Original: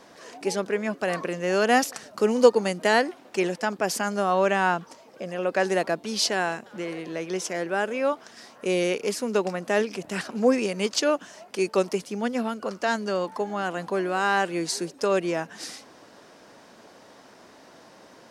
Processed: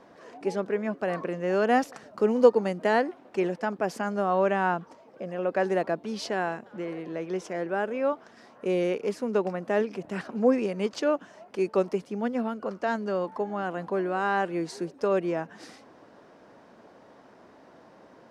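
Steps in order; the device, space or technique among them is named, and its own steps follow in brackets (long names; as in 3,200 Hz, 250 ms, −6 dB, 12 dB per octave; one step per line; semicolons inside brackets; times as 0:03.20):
through cloth (high-shelf EQ 2,900 Hz −17 dB)
level −1 dB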